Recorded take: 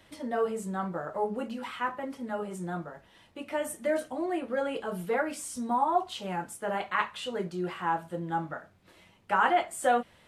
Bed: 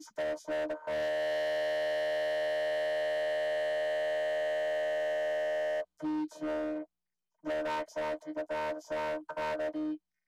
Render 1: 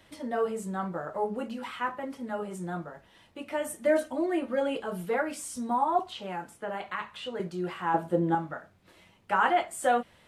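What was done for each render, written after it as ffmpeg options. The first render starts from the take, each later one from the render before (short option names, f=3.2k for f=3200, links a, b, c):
-filter_complex "[0:a]asettb=1/sr,asplit=3[a][b][c];[a]atrim=end=3.854[d];[b]atrim=start=3.85:end=4.76,asetpts=PTS-STARTPTS,afade=t=in:d=0.004:c=qsin,afade=t=out:st=0.906:d=0.004:c=qsin,aecho=1:1:3.3:0.65,atrim=end_sample=40131[e];[c]atrim=start=4.756[f];[d][e]acrossfade=d=0.004:c1=hsin:c2=qsin[g];[g][f]acrossfade=d=0.004:c1=qsin:c2=hsin,asettb=1/sr,asplit=3[h][i][j];[h]atrim=end=5.994[k];[i]atrim=start=5.99:end=7.4,asetpts=PTS-STARTPTS,afade=t=in:d=0.004:c=qsin,afade=t=out:st=1.406:d=0.004:c=qsin,acrossover=split=240|4300[l][m][n];[l]acompressor=threshold=-48dB:ratio=4[o];[m]acompressor=threshold=-32dB:ratio=4[p];[n]acompressor=threshold=-58dB:ratio=4[q];[o][p][q]amix=inputs=3:normalize=0[r];[j]atrim=start=7.396[s];[k][r]acrossfade=d=0.004:c1=hsin:c2=qsin[t];[t][s]acrossfade=d=0.004:c1=qsin:c2=hsin,asettb=1/sr,asplit=3[u][v][w];[u]atrim=end=7.944[x];[v]atrim=start=7.94:end=8.35,asetpts=PTS-STARTPTS,afade=t=in:d=0.004:c=qsin,afade=t=out:st=0.406:d=0.004:c=qsin,equalizer=f=360:w=0.47:g=11[y];[w]atrim=start=8.346[z];[x][y]acrossfade=d=0.004:c1=hsin:c2=qsin[aa];[aa][z]acrossfade=d=0.004:c1=qsin:c2=hsin"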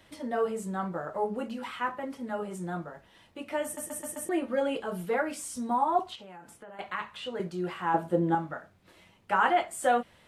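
-filter_complex "[0:a]asettb=1/sr,asplit=3[a][b][c];[a]atrim=end=6.154[d];[b]atrim=start=6.15:end=6.79,asetpts=PTS-STARTPTS,afade=t=in:d=0.004:c=qsin,afade=t=out:st=0.636:d=0.004:c=qsin,acompressor=threshold=-45dB:ratio=5:attack=3.2:release=140:knee=1:detection=peak[e];[c]atrim=start=6.786[f];[d][e]acrossfade=d=0.004:c1=hsin:c2=qsin[g];[g][f]acrossfade=d=0.004:c1=qsin:c2=hsin,asplit=6[h][i][j][k][l][m];[h]atrim=end=3.772[n];[i]atrim=start=3.638:end=3.772[o];[j]atrim=start=3.638:end=3.772[p];[k]atrim=start=3.638:end=3.772[q];[l]atrim=start=3.638:end=3.772[r];[m]atrim=start=4.288[s];[n][o]acrossfade=d=0.004:c1=hsin:c2=hsin[t];[t][p]acrossfade=d=0.004:c1=hsin:c2=hsin[u];[u][q]acrossfade=d=0.004:c1=hsin:c2=hsin[v];[v][r]acrossfade=d=0.004:c1=hsin:c2=hsin[w];[w][s]acrossfade=d=0.004:c1=hsin:c2=hsin"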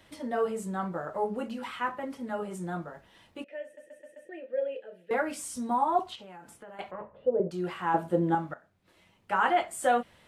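-filter_complex "[0:a]asettb=1/sr,asplit=3[a][b][c];[a]atrim=end=3.444[d];[b]atrim=start=3.44:end=5.11,asetpts=PTS-STARTPTS,afade=t=in:d=0.004:c=qsin,afade=t=out:st=1.666:d=0.004:c=qsin,asplit=3[e][f][g];[e]bandpass=f=530:t=q:w=8,volume=0dB[h];[f]bandpass=f=1.84k:t=q:w=8,volume=-6dB[i];[g]bandpass=f=2.48k:t=q:w=8,volume=-9dB[j];[h][i][j]amix=inputs=3:normalize=0[k];[c]atrim=start=5.106[l];[d][k]acrossfade=d=0.004:c1=hsin:c2=qsin[m];[m][l]acrossfade=d=0.004:c1=qsin:c2=hsin,asettb=1/sr,asplit=3[n][o][p];[n]atrim=end=6.914[q];[o]atrim=start=6.91:end=7.51,asetpts=PTS-STARTPTS,afade=t=in:d=0.004:c=qsin,afade=t=out:st=0.596:d=0.004:c=qsin,lowpass=f=540:t=q:w=5[r];[p]atrim=start=7.506[s];[q][r]acrossfade=d=0.004:c1=hsin:c2=qsin[t];[t][s]acrossfade=d=0.004:c1=qsin:c2=hsin,asplit=2[u][v];[u]atrim=end=8.54,asetpts=PTS-STARTPTS,afade=t=out:st=8.536:d=0.004:c=hsin:silence=0.199526[w];[v]atrim=start=8.54,asetpts=PTS-STARTPTS,afade=t=in:d=1.05:silence=0.199526[x];[w][x]concat=n=2:v=0:a=1"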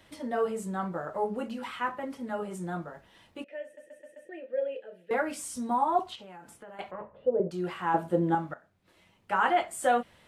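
-af anull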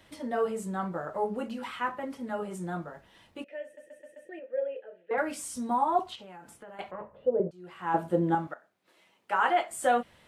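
-filter_complex "[0:a]asettb=1/sr,asplit=3[a][b][c];[a]atrim=end=4.394[d];[b]atrim=start=4.39:end=5.18,asetpts=PTS-STARTPTS,afade=t=in:d=0.004:c=qsin,afade=t=out:st=0.786:d=0.004:c=qsin,highpass=340,lowpass=2.2k[e];[c]atrim=start=5.176[f];[d][e]acrossfade=d=0.004:c1=hsin:c2=qsin[g];[g][f]acrossfade=d=0.004:c1=qsin:c2=hsin,asettb=1/sr,asplit=3[h][i][j];[h]atrim=end=8.474[k];[i]atrim=start=8.47:end=9.71,asetpts=PTS-STARTPTS,afade=t=in:d=0.004:c=qsin,afade=t=out:st=1.236:d=0.004:c=qsin,highpass=310[l];[j]atrim=start=9.706[m];[k][l]acrossfade=d=0.004:c1=hsin:c2=qsin[n];[n][m]acrossfade=d=0.004:c1=qsin:c2=hsin,asplit=2[o][p];[o]atrim=end=7.51,asetpts=PTS-STARTPTS,afade=t=out:st=7.506:d=0.004:c=hsin:silence=0.112202[q];[p]atrim=start=7.51,asetpts=PTS-STARTPTS,afade=t=in:d=0.45:c=qua:silence=0.112202[r];[q][r]concat=n=2:v=0:a=1"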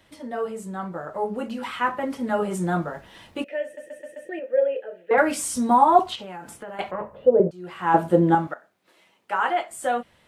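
-af "dynaudnorm=f=280:g=13:m=11.5dB"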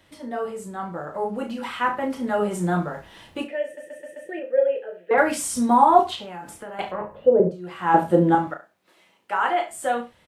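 -filter_complex "[0:a]asplit=2[a][b];[b]adelay=34,volume=-7.5dB[c];[a][c]amix=inputs=2:normalize=0,aecho=1:1:72:0.15"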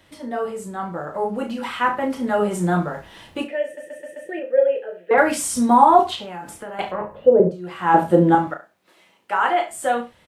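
-af "volume=3dB,alimiter=limit=-2dB:level=0:latency=1"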